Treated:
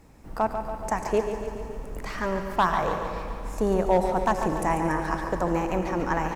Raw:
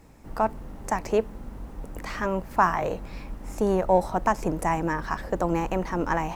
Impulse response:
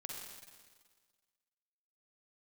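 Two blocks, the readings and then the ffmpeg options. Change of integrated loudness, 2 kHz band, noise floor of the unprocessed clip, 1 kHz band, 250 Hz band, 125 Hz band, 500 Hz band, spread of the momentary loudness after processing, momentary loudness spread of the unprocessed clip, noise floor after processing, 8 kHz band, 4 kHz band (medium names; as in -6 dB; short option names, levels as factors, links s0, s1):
-0.5 dB, 0.0 dB, -42 dBFS, 0.0 dB, +0.5 dB, 0.0 dB, +0.5 dB, 12 LU, 17 LU, -39 dBFS, 0.0 dB, +2.5 dB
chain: -filter_complex "[0:a]asoftclip=type=hard:threshold=0.224,aecho=1:1:142|284|426|568|710|852|994:0.376|0.218|0.126|0.0733|0.0425|0.0247|0.0143,asplit=2[s0][s1];[1:a]atrim=start_sample=2205,asetrate=24696,aresample=44100[s2];[s1][s2]afir=irnorm=-1:irlink=0,volume=0.473[s3];[s0][s3]amix=inputs=2:normalize=0,volume=0.668"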